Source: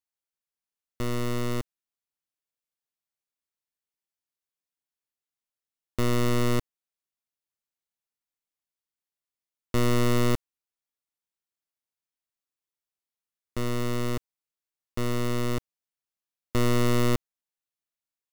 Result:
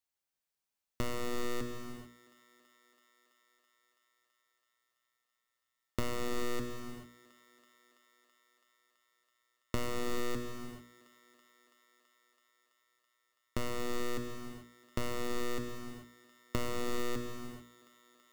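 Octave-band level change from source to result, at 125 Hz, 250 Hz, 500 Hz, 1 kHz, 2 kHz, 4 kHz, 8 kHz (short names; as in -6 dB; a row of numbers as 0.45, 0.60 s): -16.0, -11.0, -8.0, -7.5, -7.0, -7.5, -7.0 dB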